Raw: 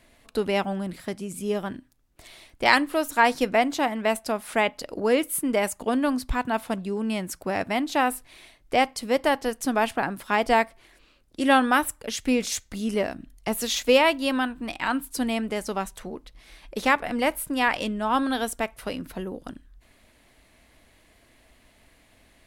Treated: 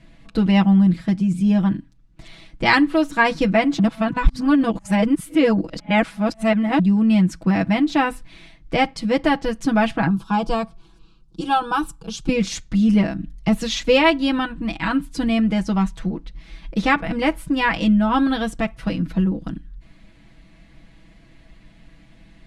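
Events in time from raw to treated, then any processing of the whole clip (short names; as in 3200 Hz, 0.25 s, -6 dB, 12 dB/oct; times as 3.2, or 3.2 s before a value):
3.79–6.79 reverse
10.08–12.29 fixed phaser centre 390 Hz, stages 8
whole clip: LPF 5300 Hz 12 dB/oct; resonant low shelf 310 Hz +10 dB, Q 1.5; comb 6.1 ms, depth 88%; gain +1 dB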